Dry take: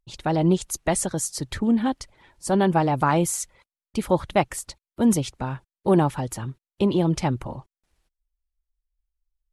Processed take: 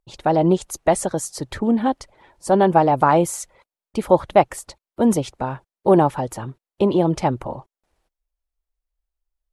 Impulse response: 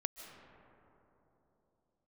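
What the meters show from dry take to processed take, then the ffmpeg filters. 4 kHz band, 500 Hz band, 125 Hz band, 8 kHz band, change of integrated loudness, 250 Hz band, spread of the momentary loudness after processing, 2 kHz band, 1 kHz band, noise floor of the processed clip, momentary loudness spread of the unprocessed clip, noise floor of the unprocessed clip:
-1.0 dB, +6.5 dB, 0.0 dB, -2.0 dB, +4.0 dB, +2.0 dB, 17 LU, +1.5 dB, +6.5 dB, under -85 dBFS, 14 LU, under -85 dBFS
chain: -af "equalizer=f=630:t=o:w=2.2:g=10,volume=0.794"

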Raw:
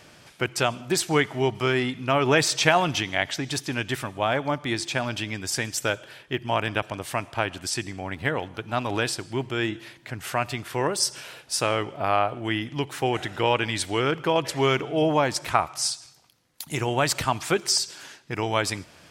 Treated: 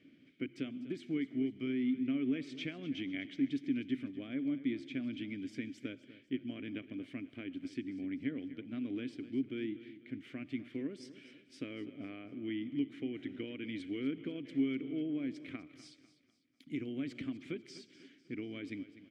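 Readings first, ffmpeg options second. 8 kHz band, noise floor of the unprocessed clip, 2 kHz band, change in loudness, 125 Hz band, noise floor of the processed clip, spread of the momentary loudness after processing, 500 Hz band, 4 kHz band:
under -35 dB, -52 dBFS, -21.0 dB, -14.0 dB, -19.0 dB, -66 dBFS, 12 LU, -20.0 dB, -23.0 dB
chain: -filter_complex "[0:a]tiltshelf=f=1400:g=7.5,acompressor=threshold=0.112:ratio=6,asplit=3[s0][s1][s2];[s0]bandpass=f=270:t=q:w=8,volume=1[s3];[s1]bandpass=f=2290:t=q:w=8,volume=0.501[s4];[s2]bandpass=f=3010:t=q:w=8,volume=0.355[s5];[s3][s4][s5]amix=inputs=3:normalize=0,aecho=1:1:248|496|744|992:0.168|0.0705|0.0296|0.0124,volume=0.75"

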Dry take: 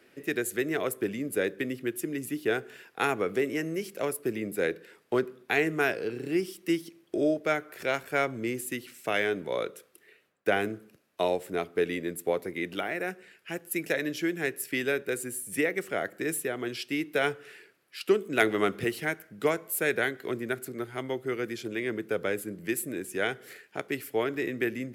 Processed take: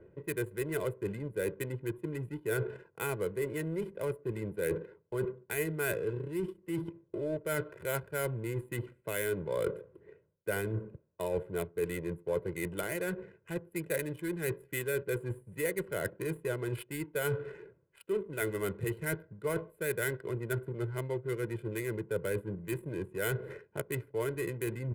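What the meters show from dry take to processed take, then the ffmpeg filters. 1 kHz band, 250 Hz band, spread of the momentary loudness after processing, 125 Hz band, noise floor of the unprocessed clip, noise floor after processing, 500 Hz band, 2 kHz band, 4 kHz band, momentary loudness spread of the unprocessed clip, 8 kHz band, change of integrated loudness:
-9.5 dB, -6.5 dB, 5 LU, +5.0 dB, -63 dBFS, -68 dBFS, -4.5 dB, -8.0 dB, -10.5 dB, 7 LU, -5.0 dB, -5.5 dB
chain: -af "bass=f=250:g=12,treble=f=4000:g=-8,adynamicsmooth=sensitivity=6.5:basefreq=630,highshelf=f=8200:g=-9.5,areverse,acompressor=threshold=0.0112:ratio=10,areverse,aecho=1:1:2:0.78,aexciter=amount=14.2:drive=7.7:freq=8700,volume=2.11"

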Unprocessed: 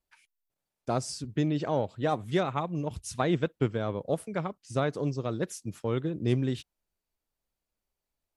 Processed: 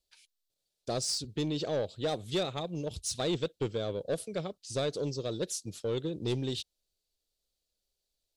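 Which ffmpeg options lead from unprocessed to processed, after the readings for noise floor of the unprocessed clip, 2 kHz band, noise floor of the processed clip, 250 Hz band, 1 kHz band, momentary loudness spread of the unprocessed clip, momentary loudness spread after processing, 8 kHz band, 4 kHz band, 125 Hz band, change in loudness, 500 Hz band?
under -85 dBFS, -6.0 dB, -85 dBFS, -5.5 dB, -8.5 dB, 7 LU, 5 LU, +5.0 dB, +6.0 dB, -6.5 dB, -3.0 dB, -2.0 dB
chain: -af "equalizer=f=125:t=o:w=1:g=-4,equalizer=f=250:t=o:w=1:g=-5,equalizer=f=500:t=o:w=1:g=5,equalizer=f=1000:t=o:w=1:g=-11,equalizer=f=2000:t=o:w=1:g=-7,equalizer=f=4000:t=o:w=1:g=12,equalizer=f=8000:t=o:w=1:g=4,asoftclip=type=tanh:threshold=0.0631"

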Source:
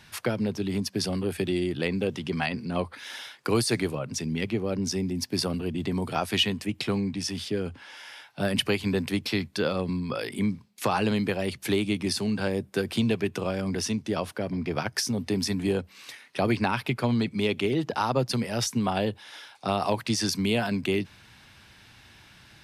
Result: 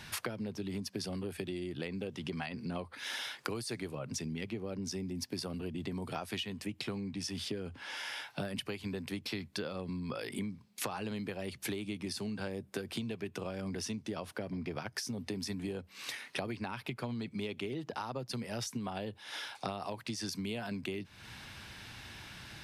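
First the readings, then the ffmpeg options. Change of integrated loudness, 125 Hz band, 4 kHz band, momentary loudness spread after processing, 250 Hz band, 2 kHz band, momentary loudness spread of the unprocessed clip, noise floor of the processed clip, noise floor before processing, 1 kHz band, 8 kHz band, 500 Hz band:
-11.5 dB, -11.5 dB, -10.0 dB, 4 LU, -11.5 dB, -9.5 dB, 6 LU, -60 dBFS, -54 dBFS, -12.0 dB, -9.0 dB, -12.0 dB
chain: -af "acompressor=threshold=0.0112:ratio=16,volume=1.58"

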